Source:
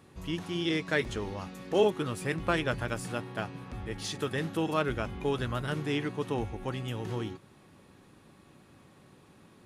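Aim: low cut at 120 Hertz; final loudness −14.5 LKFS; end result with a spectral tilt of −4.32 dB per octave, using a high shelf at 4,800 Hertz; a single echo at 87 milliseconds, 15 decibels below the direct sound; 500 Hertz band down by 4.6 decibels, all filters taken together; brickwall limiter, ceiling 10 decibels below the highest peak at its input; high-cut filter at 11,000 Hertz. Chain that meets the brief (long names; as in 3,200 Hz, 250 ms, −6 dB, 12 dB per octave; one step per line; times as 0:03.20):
high-pass filter 120 Hz
low-pass filter 11,000 Hz
parametric band 500 Hz −6 dB
high-shelf EQ 4,800 Hz +7 dB
brickwall limiter −23.5 dBFS
single-tap delay 87 ms −15 dB
level +22 dB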